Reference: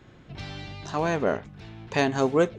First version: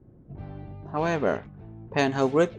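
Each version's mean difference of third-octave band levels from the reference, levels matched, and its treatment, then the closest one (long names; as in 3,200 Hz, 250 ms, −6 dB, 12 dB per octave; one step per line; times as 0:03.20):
4.0 dB: low-pass that shuts in the quiet parts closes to 400 Hz, open at −18.5 dBFS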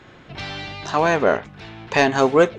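2.5 dB: mid-hump overdrive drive 9 dB, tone 4,000 Hz, clips at −7.5 dBFS
level +6.5 dB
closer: second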